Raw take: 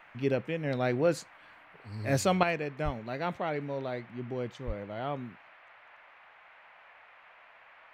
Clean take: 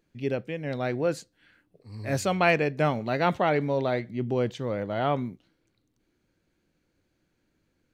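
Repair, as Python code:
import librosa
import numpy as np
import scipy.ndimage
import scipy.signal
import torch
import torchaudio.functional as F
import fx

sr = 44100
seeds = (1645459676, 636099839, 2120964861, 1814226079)

y = fx.highpass(x, sr, hz=140.0, slope=24, at=(2.84, 2.96), fade=0.02)
y = fx.highpass(y, sr, hz=140.0, slope=24, at=(4.66, 4.78), fade=0.02)
y = fx.noise_reduce(y, sr, print_start_s=7.16, print_end_s=7.66, reduce_db=17.0)
y = fx.fix_level(y, sr, at_s=2.43, step_db=9.0)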